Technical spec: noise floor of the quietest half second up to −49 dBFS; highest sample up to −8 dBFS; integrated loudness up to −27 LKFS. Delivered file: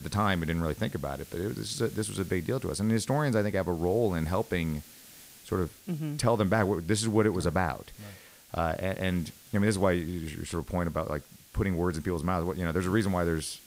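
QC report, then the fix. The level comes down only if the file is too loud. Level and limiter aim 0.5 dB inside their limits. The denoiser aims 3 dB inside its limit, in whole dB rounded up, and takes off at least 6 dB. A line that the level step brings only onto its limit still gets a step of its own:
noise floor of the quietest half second −51 dBFS: in spec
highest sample −12.0 dBFS: in spec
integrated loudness −30.0 LKFS: in spec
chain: no processing needed

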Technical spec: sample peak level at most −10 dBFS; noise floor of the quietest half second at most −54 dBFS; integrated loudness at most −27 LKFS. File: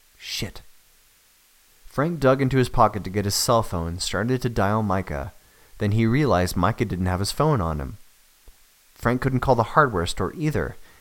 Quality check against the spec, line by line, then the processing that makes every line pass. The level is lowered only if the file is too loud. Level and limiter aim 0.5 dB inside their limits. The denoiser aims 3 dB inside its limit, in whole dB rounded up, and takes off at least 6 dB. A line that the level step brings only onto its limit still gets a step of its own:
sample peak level −2.5 dBFS: out of spec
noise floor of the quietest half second −58 dBFS: in spec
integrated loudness −23.0 LKFS: out of spec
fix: level −4.5 dB
brickwall limiter −10.5 dBFS

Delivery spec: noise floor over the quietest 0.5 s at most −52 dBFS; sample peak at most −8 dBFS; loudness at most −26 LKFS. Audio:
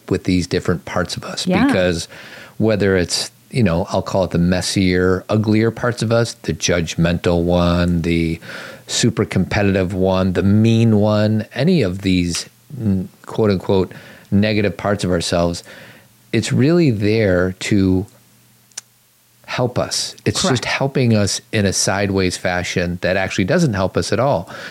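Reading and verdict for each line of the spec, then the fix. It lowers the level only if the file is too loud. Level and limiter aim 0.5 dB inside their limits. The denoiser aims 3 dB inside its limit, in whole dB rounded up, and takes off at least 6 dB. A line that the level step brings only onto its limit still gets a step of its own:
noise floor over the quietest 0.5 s −55 dBFS: in spec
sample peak −5.0 dBFS: out of spec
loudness −17.5 LKFS: out of spec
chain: level −9 dB

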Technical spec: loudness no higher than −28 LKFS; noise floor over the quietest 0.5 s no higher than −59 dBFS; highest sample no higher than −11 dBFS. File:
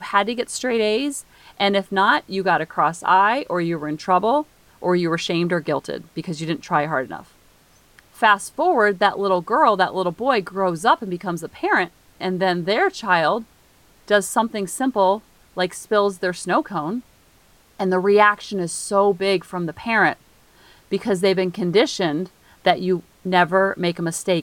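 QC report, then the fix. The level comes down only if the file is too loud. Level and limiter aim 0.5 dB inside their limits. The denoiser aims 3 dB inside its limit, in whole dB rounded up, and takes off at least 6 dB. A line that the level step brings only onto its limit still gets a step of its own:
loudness −20.5 LKFS: out of spec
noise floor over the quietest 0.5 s −55 dBFS: out of spec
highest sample −3.0 dBFS: out of spec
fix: level −8 dB
brickwall limiter −11.5 dBFS

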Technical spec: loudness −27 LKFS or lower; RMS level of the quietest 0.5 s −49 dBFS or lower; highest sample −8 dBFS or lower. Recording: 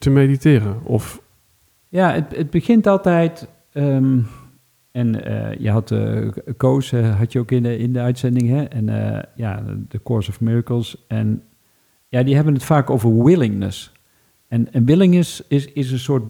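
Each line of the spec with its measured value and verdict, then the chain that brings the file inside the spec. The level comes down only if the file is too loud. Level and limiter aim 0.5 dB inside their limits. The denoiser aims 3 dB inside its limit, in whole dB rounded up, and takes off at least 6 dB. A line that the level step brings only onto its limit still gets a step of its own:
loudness −18.0 LKFS: out of spec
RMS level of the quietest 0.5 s −59 dBFS: in spec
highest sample −3.0 dBFS: out of spec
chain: level −9.5 dB

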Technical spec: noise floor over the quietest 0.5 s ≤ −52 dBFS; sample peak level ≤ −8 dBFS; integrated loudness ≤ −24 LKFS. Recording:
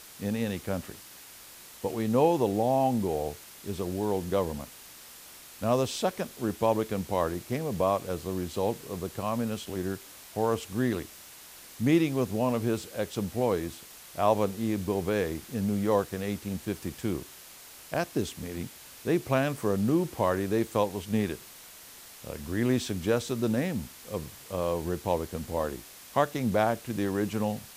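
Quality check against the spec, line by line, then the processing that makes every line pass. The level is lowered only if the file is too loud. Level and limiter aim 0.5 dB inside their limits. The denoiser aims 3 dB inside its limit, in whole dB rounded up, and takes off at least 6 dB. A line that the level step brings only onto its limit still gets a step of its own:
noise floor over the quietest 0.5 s −49 dBFS: out of spec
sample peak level −10.0 dBFS: in spec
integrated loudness −30.0 LKFS: in spec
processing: broadband denoise 6 dB, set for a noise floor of −49 dBFS

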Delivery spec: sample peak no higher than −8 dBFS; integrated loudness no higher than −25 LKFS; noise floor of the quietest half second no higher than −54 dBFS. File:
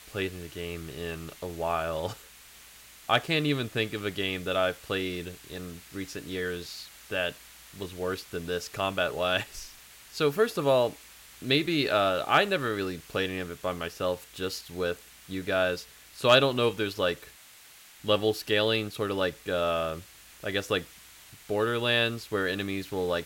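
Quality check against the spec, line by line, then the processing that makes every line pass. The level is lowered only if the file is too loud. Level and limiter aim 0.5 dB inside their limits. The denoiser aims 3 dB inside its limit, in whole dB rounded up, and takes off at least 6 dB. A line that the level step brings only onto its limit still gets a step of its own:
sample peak −9.5 dBFS: in spec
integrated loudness −29.0 LKFS: in spec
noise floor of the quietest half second −53 dBFS: out of spec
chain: broadband denoise 6 dB, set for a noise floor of −53 dBFS

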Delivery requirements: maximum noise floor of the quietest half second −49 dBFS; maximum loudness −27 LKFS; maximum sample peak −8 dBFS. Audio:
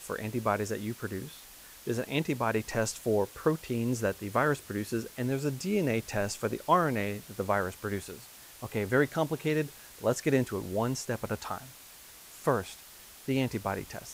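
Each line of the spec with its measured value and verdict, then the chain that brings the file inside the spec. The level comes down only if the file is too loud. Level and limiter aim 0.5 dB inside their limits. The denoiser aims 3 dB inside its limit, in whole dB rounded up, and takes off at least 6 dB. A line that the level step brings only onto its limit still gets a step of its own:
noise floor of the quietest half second −51 dBFS: in spec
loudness −31.5 LKFS: in spec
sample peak −11.0 dBFS: in spec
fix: no processing needed

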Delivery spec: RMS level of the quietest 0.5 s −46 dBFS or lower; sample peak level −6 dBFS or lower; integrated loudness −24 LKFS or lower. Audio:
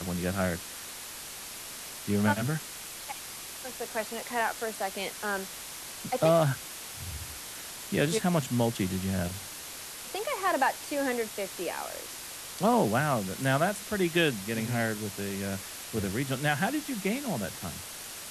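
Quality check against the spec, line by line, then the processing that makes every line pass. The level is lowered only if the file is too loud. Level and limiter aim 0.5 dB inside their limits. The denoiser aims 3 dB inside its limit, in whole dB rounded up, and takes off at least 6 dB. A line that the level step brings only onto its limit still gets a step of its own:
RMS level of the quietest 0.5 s −42 dBFS: out of spec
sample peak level −12.0 dBFS: in spec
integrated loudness −31.0 LKFS: in spec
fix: broadband denoise 7 dB, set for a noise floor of −42 dBFS

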